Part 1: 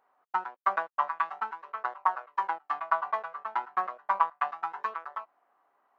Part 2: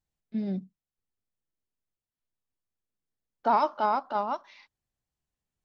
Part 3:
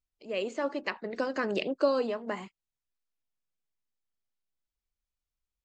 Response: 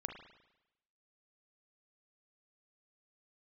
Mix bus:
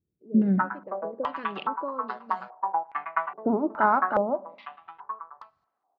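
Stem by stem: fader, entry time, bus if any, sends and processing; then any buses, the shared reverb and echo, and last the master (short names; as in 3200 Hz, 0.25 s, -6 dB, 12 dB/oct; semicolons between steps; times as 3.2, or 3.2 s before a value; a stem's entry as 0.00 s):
4.08 s -5.5 dB -> 4.39 s -16 dB, 0.25 s, send -11 dB, dry
-3.0 dB, 0.00 s, send -10 dB, dry
-14.0 dB, 0.00 s, no send, auto duck -7 dB, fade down 1.90 s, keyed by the second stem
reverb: on, RT60 0.90 s, pre-delay 35 ms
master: HPF 56 Hz; bell 140 Hz +10.5 dB 2.6 oct; stepped low-pass 2.4 Hz 380–4500 Hz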